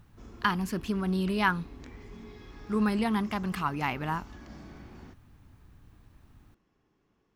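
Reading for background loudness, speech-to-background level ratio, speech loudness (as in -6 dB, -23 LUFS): -49.5 LUFS, 19.5 dB, -30.0 LUFS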